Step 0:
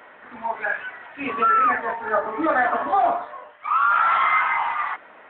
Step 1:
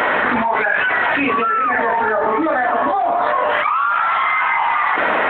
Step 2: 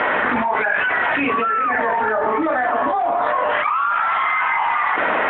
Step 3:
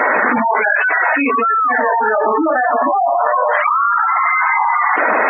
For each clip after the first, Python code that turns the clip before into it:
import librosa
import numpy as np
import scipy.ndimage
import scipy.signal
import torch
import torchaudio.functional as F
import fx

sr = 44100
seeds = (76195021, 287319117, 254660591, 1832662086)

y1 = fx.dynamic_eq(x, sr, hz=1300.0, q=2.8, threshold_db=-29.0, ratio=4.0, max_db=-4)
y1 = fx.env_flatten(y1, sr, amount_pct=100)
y2 = scipy.signal.sosfilt(scipy.signal.butter(4, 3600.0, 'lowpass', fs=sr, output='sos'), y1)
y2 = F.gain(torch.from_numpy(y2), -2.0).numpy()
y3 = fx.spec_gate(y2, sr, threshold_db=-15, keep='strong')
y3 = F.gain(torch.from_numpy(y3), 5.0).numpy()